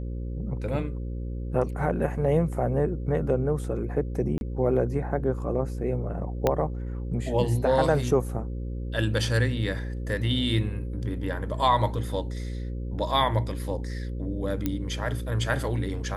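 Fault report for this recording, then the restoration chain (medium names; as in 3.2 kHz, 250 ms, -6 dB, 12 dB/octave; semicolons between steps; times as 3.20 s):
buzz 60 Hz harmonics 9 -32 dBFS
4.38–4.41 s: dropout 31 ms
6.47 s: pop -9 dBFS
14.66 s: pop -13 dBFS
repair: de-click; de-hum 60 Hz, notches 9; interpolate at 4.38 s, 31 ms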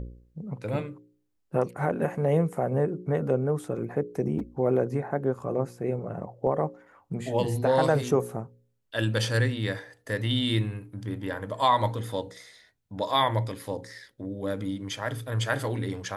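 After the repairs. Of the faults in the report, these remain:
6.47 s: pop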